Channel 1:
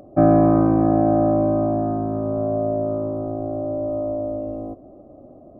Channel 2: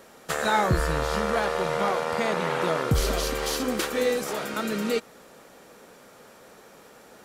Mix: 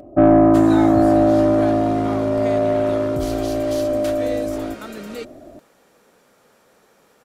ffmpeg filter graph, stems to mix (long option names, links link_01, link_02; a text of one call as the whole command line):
ffmpeg -i stem1.wav -i stem2.wav -filter_complex "[0:a]aecho=1:1:3.1:0.39,bandreject=frequency=77.74:width_type=h:width=4,bandreject=frequency=155.48:width_type=h:width=4,bandreject=frequency=233.22:width_type=h:width=4,bandreject=frequency=310.96:width_type=h:width=4,bandreject=frequency=388.7:width_type=h:width=4,bandreject=frequency=466.44:width_type=h:width=4,bandreject=frequency=544.18:width_type=h:width=4,bandreject=frequency=621.92:width_type=h:width=4,bandreject=frequency=699.66:width_type=h:width=4,bandreject=frequency=777.4:width_type=h:width=4,bandreject=frequency=855.14:width_type=h:width=4,bandreject=frequency=932.88:width_type=h:width=4,bandreject=frequency=1010.62:width_type=h:width=4,bandreject=frequency=1088.36:width_type=h:width=4,bandreject=frequency=1166.1:width_type=h:width=4,bandreject=frequency=1243.84:width_type=h:width=4,bandreject=frequency=1321.58:width_type=h:width=4,bandreject=frequency=1399.32:width_type=h:width=4,bandreject=frequency=1477.06:width_type=h:width=4,bandreject=frequency=1554.8:width_type=h:width=4,bandreject=frequency=1632.54:width_type=h:width=4,bandreject=frequency=1710.28:width_type=h:width=4,bandreject=frequency=1788.02:width_type=h:width=4,bandreject=frequency=1865.76:width_type=h:width=4,bandreject=frequency=1943.5:width_type=h:width=4,bandreject=frequency=2021.24:width_type=h:width=4,bandreject=frequency=2098.98:width_type=h:width=4,bandreject=frequency=2176.72:width_type=h:width=4,bandreject=frequency=2254.46:width_type=h:width=4,bandreject=frequency=2332.2:width_type=h:width=4,bandreject=frequency=2409.94:width_type=h:width=4,bandreject=frequency=2487.68:width_type=h:width=4,bandreject=frequency=2565.42:width_type=h:width=4,bandreject=frequency=2643.16:width_type=h:width=4,bandreject=frequency=2720.9:width_type=h:width=4,bandreject=frequency=2798.64:width_type=h:width=4,bandreject=frequency=2876.38:width_type=h:width=4,bandreject=frequency=2954.12:width_type=h:width=4,bandreject=frequency=3031.86:width_type=h:width=4,acontrast=41,volume=-3dB[link_01];[1:a]adelay=250,volume=-6dB[link_02];[link_01][link_02]amix=inputs=2:normalize=0" out.wav